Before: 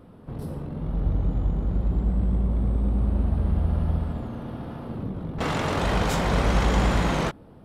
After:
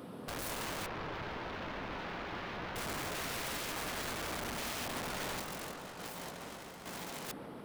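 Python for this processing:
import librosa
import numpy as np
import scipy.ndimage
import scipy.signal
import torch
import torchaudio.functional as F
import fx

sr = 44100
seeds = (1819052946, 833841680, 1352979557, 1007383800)

y = fx.tracing_dist(x, sr, depth_ms=0.22)
y = scipy.signal.sosfilt(scipy.signal.butter(2, 190.0, 'highpass', fs=sr, output='sos'), y)
y = fx.high_shelf(y, sr, hz=2500.0, db=9.0)
y = fx.over_compress(y, sr, threshold_db=-32.0, ratio=-0.5)
y = fx.tremolo_random(y, sr, seeds[0], hz=3.5, depth_pct=55)
y = (np.mod(10.0 ** (36.0 / 20.0) * y + 1.0, 2.0) - 1.0) / 10.0 ** (36.0 / 20.0)
y = fx.air_absorb(y, sr, metres=280.0, at=(0.86, 2.76))
y = fx.echo_wet_lowpass(y, sr, ms=145, feedback_pct=79, hz=1700.0, wet_db=-9.5)
y = y * 10.0 ** (1.0 / 20.0)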